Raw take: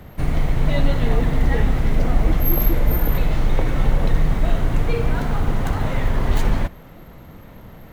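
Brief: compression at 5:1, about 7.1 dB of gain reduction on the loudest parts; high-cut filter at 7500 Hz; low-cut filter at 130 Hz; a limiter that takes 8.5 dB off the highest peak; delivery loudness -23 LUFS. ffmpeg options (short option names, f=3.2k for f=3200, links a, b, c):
-af "highpass=130,lowpass=7.5k,acompressor=threshold=-28dB:ratio=5,volume=11dB,alimiter=limit=-13.5dB:level=0:latency=1"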